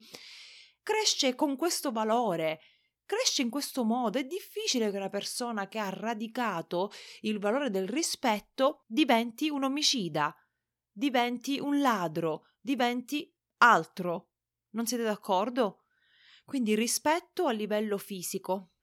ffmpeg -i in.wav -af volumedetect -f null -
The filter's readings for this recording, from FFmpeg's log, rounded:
mean_volume: -30.7 dB
max_volume: -8.9 dB